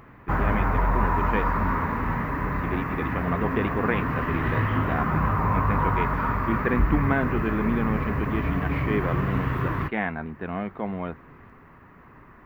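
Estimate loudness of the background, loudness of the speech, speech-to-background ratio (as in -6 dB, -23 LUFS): -26.0 LUFS, -30.5 LUFS, -4.5 dB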